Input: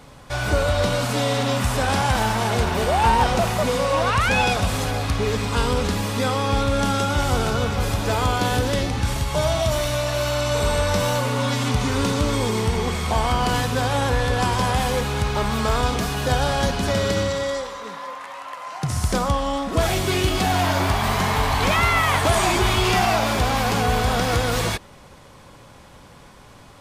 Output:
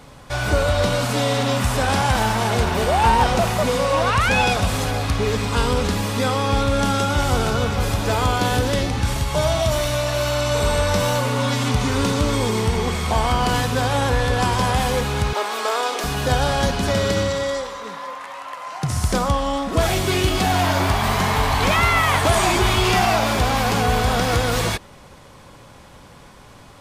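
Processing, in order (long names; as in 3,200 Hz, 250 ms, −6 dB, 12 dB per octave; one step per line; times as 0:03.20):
0:15.33–0:16.04: high-pass filter 370 Hz 24 dB per octave
level +1.5 dB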